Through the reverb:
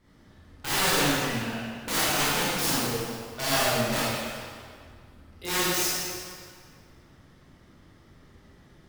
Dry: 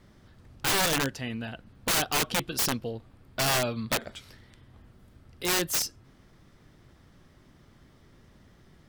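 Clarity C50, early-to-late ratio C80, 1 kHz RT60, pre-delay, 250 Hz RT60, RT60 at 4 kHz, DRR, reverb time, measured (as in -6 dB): -5.5 dB, -2.5 dB, 2.1 s, 24 ms, 1.9 s, 1.7 s, -10.5 dB, 2.1 s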